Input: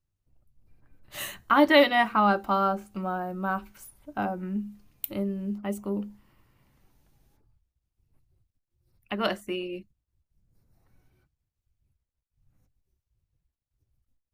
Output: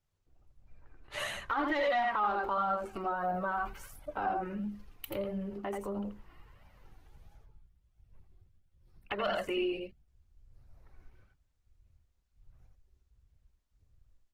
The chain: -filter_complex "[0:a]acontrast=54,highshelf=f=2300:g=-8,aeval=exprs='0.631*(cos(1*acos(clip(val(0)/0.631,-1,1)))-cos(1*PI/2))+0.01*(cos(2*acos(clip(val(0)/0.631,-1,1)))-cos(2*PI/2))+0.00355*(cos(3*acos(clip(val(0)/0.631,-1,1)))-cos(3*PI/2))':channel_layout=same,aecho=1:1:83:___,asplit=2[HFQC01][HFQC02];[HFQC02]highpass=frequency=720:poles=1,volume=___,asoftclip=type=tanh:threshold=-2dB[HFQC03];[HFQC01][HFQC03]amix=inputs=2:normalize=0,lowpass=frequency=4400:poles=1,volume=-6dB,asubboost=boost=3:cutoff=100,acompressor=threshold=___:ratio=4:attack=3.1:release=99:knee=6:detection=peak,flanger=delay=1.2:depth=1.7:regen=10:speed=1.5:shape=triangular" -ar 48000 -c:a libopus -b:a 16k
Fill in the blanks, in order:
0.596, 10dB, -27dB